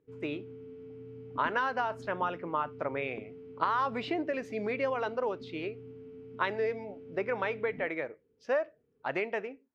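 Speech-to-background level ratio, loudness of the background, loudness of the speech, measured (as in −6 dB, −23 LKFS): 14.0 dB, −47.5 LKFS, −33.5 LKFS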